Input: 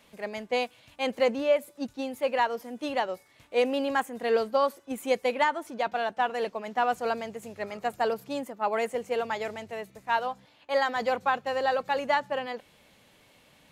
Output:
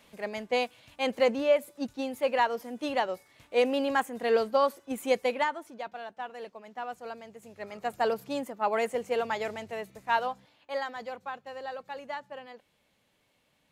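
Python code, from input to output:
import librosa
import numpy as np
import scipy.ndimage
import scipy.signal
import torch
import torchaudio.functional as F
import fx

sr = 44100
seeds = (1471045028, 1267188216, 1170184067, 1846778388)

y = fx.gain(x, sr, db=fx.line((5.2, 0.0), (5.97, -11.5), (7.21, -11.5), (8.06, 0.0), (10.24, 0.0), (11.12, -12.0)))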